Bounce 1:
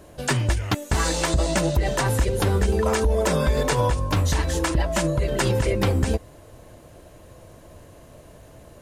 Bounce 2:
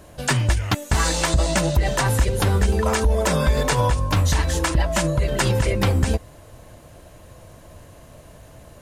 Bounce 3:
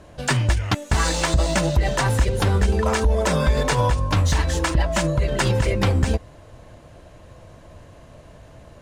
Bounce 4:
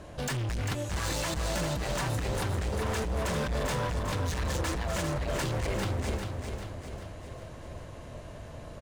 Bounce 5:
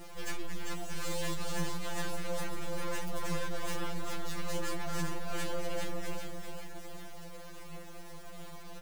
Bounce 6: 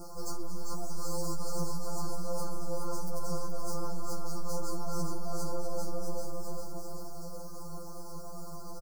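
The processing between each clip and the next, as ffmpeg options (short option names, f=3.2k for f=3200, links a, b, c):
-af "equalizer=f=380:w=1.2:g=-5,volume=3dB"
-af "adynamicsmooth=sensitivity=7:basefreq=6.7k"
-af "alimiter=limit=-17.5dB:level=0:latency=1:release=62,volume=30dB,asoftclip=hard,volume=-30dB,aecho=1:1:397|794|1191|1588|1985|2382|2779:0.501|0.266|0.141|0.0746|0.0395|0.021|0.0111"
-af "acrusher=bits=5:dc=4:mix=0:aa=0.000001,afftfilt=real='re*2.83*eq(mod(b,8),0)':imag='im*2.83*eq(mod(b,8),0)':win_size=2048:overlap=0.75,volume=1dB"
-af "aecho=1:1:422:0.447,asoftclip=type=tanh:threshold=-23.5dB,asuperstop=centerf=2500:order=20:qfactor=0.82,volume=4dB"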